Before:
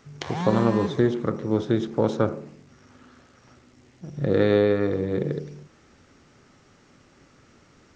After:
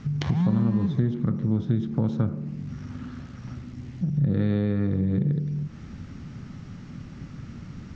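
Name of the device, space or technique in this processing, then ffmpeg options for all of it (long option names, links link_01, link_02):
jukebox: -af "lowpass=5600,lowshelf=frequency=280:width_type=q:width=1.5:gain=13.5,acompressor=threshold=-32dB:ratio=3,volume=5.5dB"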